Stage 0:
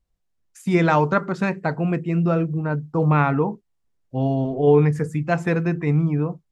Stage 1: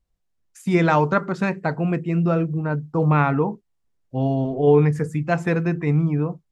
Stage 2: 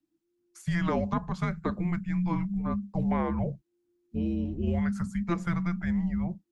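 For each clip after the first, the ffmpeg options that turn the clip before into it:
-af anull
-filter_complex "[0:a]afreqshift=-350,acrossover=split=120|630[a][b][c];[a]acompressor=threshold=-34dB:ratio=4[d];[b]acompressor=threshold=-22dB:ratio=4[e];[c]acompressor=threshold=-28dB:ratio=4[f];[d][e][f]amix=inputs=3:normalize=0,volume=-4.5dB"

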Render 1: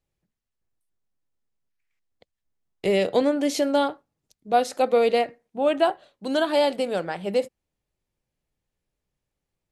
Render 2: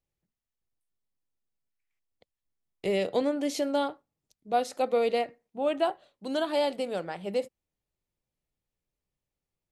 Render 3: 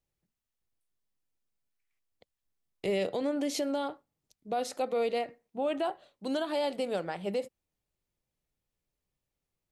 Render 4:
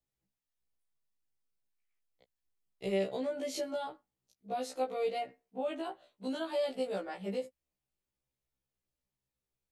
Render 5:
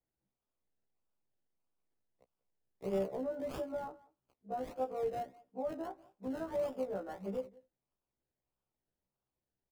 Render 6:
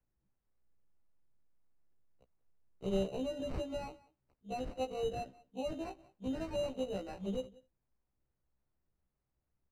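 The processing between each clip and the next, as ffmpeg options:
-af "equalizer=f=1.6k:t=o:w=0.2:g=-3.5,volume=-6dB"
-af "alimiter=limit=-23.5dB:level=0:latency=1:release=96,volume=1dB"
-af "afftfilt=real='re*1.73*eq(mod(b,3),0)':imag='im*1.73*eq(mod(b,3),0)':win_size=2048:overlap=0.75,volume=-2.5dB"
-filter_complex "[0:a]aecho=1:1:186:0.075,acrossover=split=220|1600[a][b][c];[c]acrusher=samples=30:mix=1:aa=0.000001:lfo=1:lforange=18:lforate=1.6[d];[a][b][d]amix=inputs=3:normalize=0,volume=-2.5dB"
-af "acrusher=samples=13:mix=1:aa=0.000001,aemphasis=mode=reproduction:type=bsi,volume=-2dB"

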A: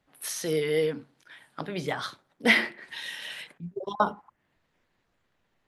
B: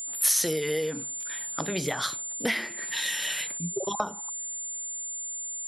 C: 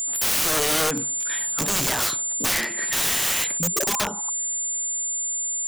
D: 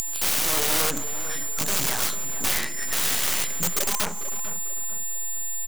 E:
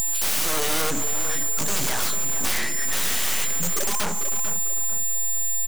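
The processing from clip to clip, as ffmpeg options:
-af "aeval=exprs='val(0)+0.00562*sin(2*PI*7200*n/s)':c=same,acompressor=threshold=-30dB:ratio=8,aemphasis=mode=production:type=50kf,volume=4.5dB"
-af "aeval=exprs='(mod(18.8*val(0)+1,2)-1)/18.8':c=same,volume=8.5dB"
-filter_complex "[0:a]acompressor=mode=upward:threshold=-26dB:ratio=2.5,acrusher=bits=4:dc=4:mix=0:aa=0.000001,asplit=2[a][b];[b]adelay=446,lowpass=f=1.7k:p=1,volume=-11dB,asplit=2[c][d];[d]adelay=446,lowpass=f=1.7k:p=1,volume=0.43,asplit=2[e][f];[f]adelay=446,lowpass=f=1.7k:p=1,volume=0.43,asplit=2[g][h];[h]adelay=446,lowpass=f=1.7k:p=1,volume=0.43[i];[a][c][e][g][i]amix=inputs=5:normalize=0"
-af "asoftclip=type=hard:threshold=-24.5dB,volume=6.5dB"

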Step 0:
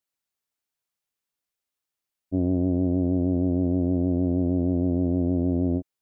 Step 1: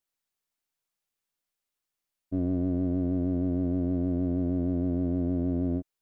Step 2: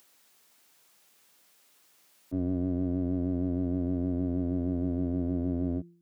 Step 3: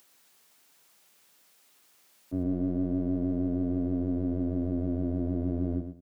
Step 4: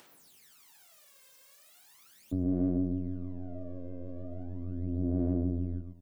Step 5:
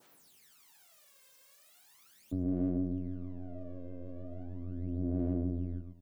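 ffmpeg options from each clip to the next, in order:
-filter_complex "[0:a]aeval=exprs='if(lt(val(0),0),0.708*val(0),val(0))':c=same,asplit=2[a][b];[b]alimiter=level_in=0.5dB:limit=-24dB:level=0:latency=1,volume=-0.5dB,volume=2.5dB[c];[a][c]amix=inputs=2:normalize=0,volume=-6.5dB"
-filter_complex "[0:a]bandreject=f=171.6:t=h:w=4,bandreject=f=343.2:t=h:w=4,acrossover=split=130[a][b];[b]acompressor=mode=upward:threshold=-40dB:ratio=2.5[c];[a][c]amix=inputs=2:normalize=0,volume=-2dB"
-af "aecho=1:1:115|230|345:0.376|0.0752|0.015"
-af "acompressor=threshold=-42dB:ratio=2.5,aphaser=in_gain=1:out_gain=1:delay=1.9:decay=0.74:speed=0.38:type=sinusoidal"
-af "adynamicequalizer=threshold=0.00112:dfrequency=2500:dqfactor=0.79:tfrequency=2500:tqfactor=0.79:attack=5:release=100:ratio=0.375:range=2.5:mode=boostabove:tftype=bell,volume=-3dB"

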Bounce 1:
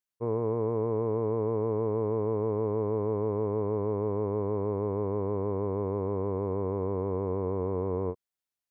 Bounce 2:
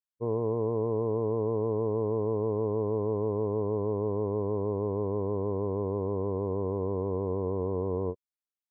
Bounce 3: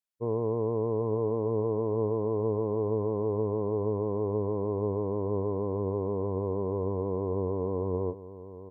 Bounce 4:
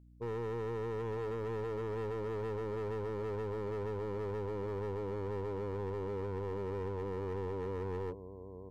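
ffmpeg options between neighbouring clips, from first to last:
-af "afftdn=nr=12:nf=-38"
-af "aecho=1:1:782:0.2"
-af "asoftclip=type=hard:threshold=-31dB,aeval=exprs='val(0)+0.00224*(sin(2*PI*60*n/s)+sin(2*PI*2*60*n/s)/2+sin(2*PI*3*60*n/s)/3+sin(2*PI*4*60*n/s)/4+sin(2*PI*5*60*n/s)/5)':c=same,volume=-4.5dB"

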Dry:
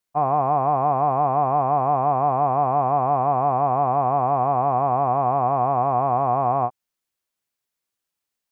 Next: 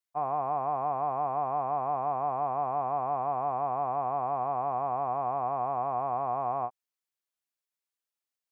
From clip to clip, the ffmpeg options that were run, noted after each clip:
-af "lowshelf=f=300:g=-9.5,volume=-8.5dB"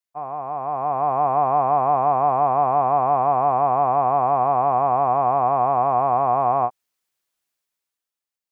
-af "dynaudnorm=f=140:g=13:m=11.5dB"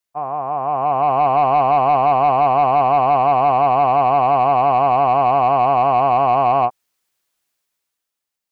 -af "asoftclip=type=tanh:threshold=-13dB,volume=6dB"

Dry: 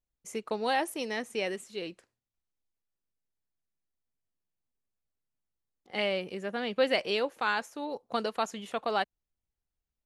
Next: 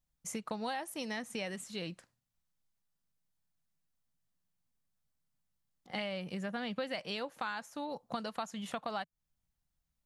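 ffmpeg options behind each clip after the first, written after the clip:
-af "equalizer=f=160:t=o:w=0.67:g=8,equalizer=f=400:t=o:w=0.67:g=-10,equalizer=f=2.5k:t=o:w=0.67:g=-3,acompressor=threshold=-40dB:ratio=5,volume=4dB"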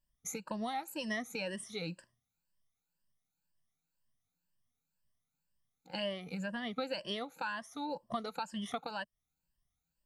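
-af "afftfilt=real='re*pow(10,17/40*sin(2*PI*(1.3*log(max(b,1)*sr/1024/100)/log(2)-(2)*(pts-256)/sr)))':imag='im*pow(10,17/40*sin(2*PI*(1.3*log(max(b,1)*sr/1024/100)/log(2)-(2)*(pts-256)/sr)))':win_size=1024:overlap=0.75,volume=-3.5dB"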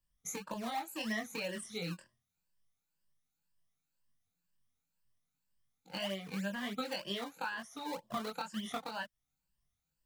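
-filter_complex "[0:a]flanger=delay=20:depth=3.1:speed=0.3,acrossover=split=100|620|2700[a][b][c][d];[b]acrusher=samples=23:mix=1:aa=0.000001:lfo=1:lforange=23:lforate=3.2[e];[a][e][c][d]amix=inputs=4:normalize=0,volume=3dB"

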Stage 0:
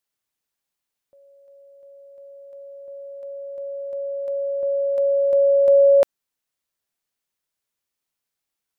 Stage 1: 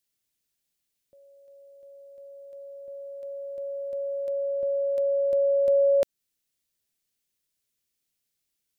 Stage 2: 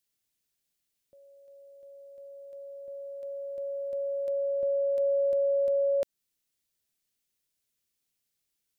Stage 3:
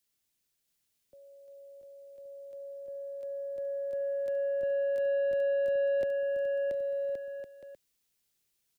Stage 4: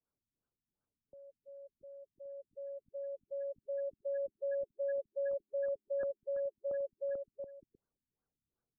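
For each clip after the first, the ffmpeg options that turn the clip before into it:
-filter_complex "[0:a]equalizer=f=1k:t=o:w=1.8:g=-12,asplit=2[a][b];[b]acompressor=threshold=-30dB:ratio=6,volume=2.5dB[c];[a][c]amix=inputs=2:normalize=0,volume=-3.5dB"
-af "alimiter=limit=-21.5dB:level=0:latency=1:release=28,volume=-1dB"
-filter_complex "[0:a]acrossover=split=130|380[a][b][c];[c]asoftclip=type=tanh:threshold=-28.5dB[d];[a][b][d]amix=inputs=3:normalize=0,aecho=1:1:680|1122|1409|1596|1717:0.631|0.398|0.251|0.158|0.1,volume=1.5dB"
-af "asoftclip=type=tanh:threshold=-32.5dB,afftfilt=real='re*lt(b*sr/1024,260*pow(1700/260,0.5+0.5*sin(2*PI*2.7*pts/sr)))':imag='im*lt(b*sr/1024,260*pow(1700/260,0.5+0.5*sin(2*PI*2.7*pts/sr)))':win_size=1024:overlap=0.75"

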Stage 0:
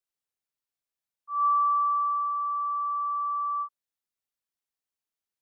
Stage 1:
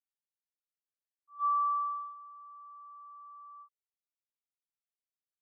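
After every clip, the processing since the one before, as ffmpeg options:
-af "agate=range=-16dB:threshold=-25dB:ratio=16:detection=peak,volume=-5.5dB"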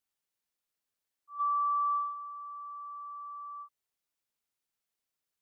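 -af "alimiter=level_in=9.5dB:limit=-24dB:level=0:latency=1,volume=-9.5dB,volume=7.5dB"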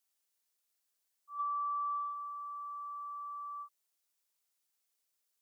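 -af "acompressor=threshold=-35dB:ratio=4,bass=f=250:g=-12,treble=f=4k:g=7"

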